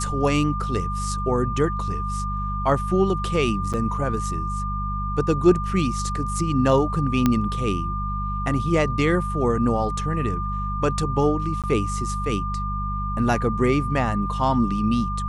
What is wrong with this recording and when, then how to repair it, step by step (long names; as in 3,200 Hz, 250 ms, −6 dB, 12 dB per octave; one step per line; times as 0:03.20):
mains hum 50 Hz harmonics 4 −28 dBFS
whistle 1,200 Hz −28 dBFS
0:03.73–0:03.74: drop-out 7.2 ms
0:07.26: click −6 dBFS
0:11.62–0:11.64: drop-out 17 ms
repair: click removal
notch filter 1,200 Hz, Q 30
hum removal 50 Hz, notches 4
repair the gap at 0:03.73, 7.2 ms
repair the gap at 0:11.62, 17 ms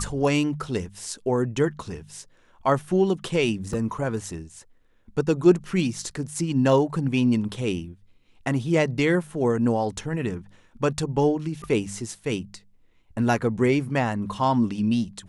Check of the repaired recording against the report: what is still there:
none of them is left